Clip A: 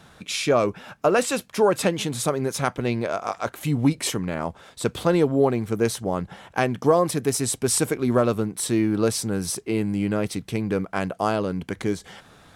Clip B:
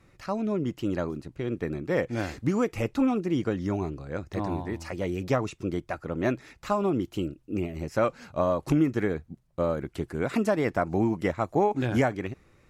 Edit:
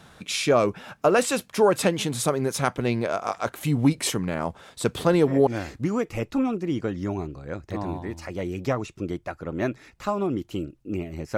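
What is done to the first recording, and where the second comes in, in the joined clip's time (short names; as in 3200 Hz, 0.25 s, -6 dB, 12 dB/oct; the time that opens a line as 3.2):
clip A
4.99 add clip B from 1.62 s 0.48 s -10.5 dB
5.47 switch to clip B from 2.1 s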